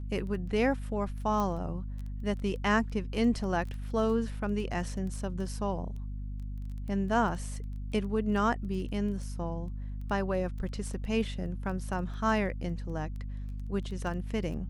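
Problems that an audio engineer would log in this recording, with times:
surface crackle 11 per second −38 dBFS
mains hum 50 Hz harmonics 5 −37 dBFS
0:01.40: click −20 dBFS

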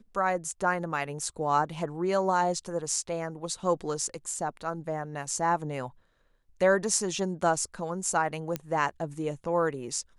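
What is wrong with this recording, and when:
0:08.56: click −15 dBFS

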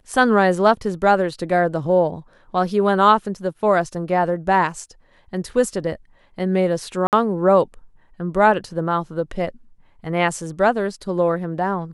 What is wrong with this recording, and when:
0:07.07–0:07.13: drop-out 58 ms

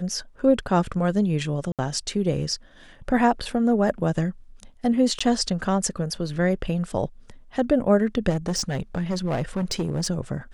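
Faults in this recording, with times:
0:01.72–0:01.79: drop-out 67 ms
0:05.19–0:05.21: drop-out 15 ms
0:08.29–0:10.10: clipping −20.5 dBFS

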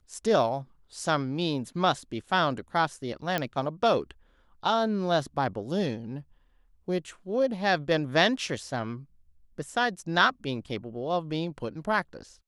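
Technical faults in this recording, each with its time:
0:03.38: click −13 dBFS

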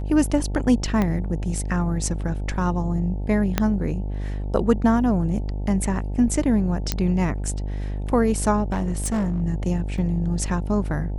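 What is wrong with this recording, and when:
mains buzz 50 Hz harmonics 18 −27 dBFS
0:01.02: click −11 dBFS
0:03.58: click −5 dBFS
0:06.92: click −6 dBFS
0:08.72–0:09.42: clipping −19.5 dBFS
0:09.98: drop-out 3.8 ms

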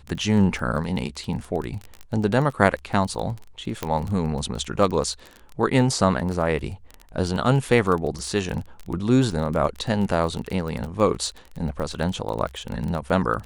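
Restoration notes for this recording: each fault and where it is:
surface crackle 18 per second −27 dBFS
0:03.83: click −10 dBFS

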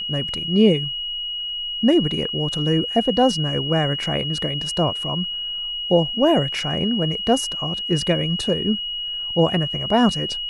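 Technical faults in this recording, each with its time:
whistle 2,900 Hz −25 dBFS

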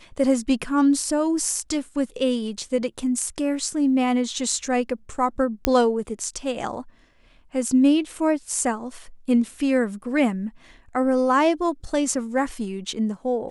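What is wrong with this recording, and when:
0:05.65: click −3 dBFS

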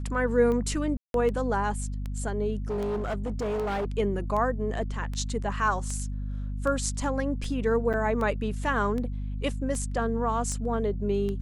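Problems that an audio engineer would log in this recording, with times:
mains hum 50 Hz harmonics 5 −32 dBFS
scratch tick 78 rpm −22 dBFS
0:00.97–0:01.14: drop-out 172 ms
0:02.68–0:03.86: clipping −26 dBFS
0:07.93–0:07.94: drop-out 7.5 ms

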